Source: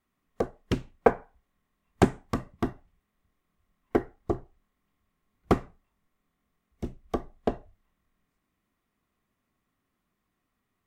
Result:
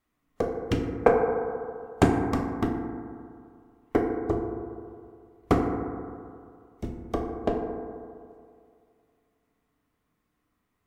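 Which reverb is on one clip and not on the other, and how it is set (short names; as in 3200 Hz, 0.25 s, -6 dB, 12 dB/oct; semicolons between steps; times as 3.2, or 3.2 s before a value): FDN reverb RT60 2.3 s, low-frequency decay 0.9×, high-frequency decay 0.25×, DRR 1 dB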